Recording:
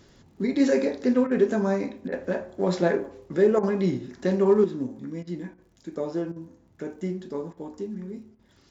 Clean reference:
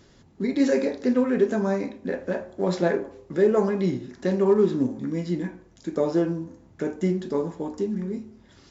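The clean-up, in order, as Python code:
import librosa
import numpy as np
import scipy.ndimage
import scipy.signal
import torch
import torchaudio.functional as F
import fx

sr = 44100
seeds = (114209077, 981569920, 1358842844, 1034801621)

y = fx.fix_declick_ar(x, sr, threshold=6.5)
y = fx.fix_interpolate(y, sr, at_s=(1.27, 2.08, 3.59, 5.23, 5.54, 6.32, 7.53, 8.35), length_ms=40.0)
y = fx.fix_level(y, sr, at_s=4.64, step_db=6.5)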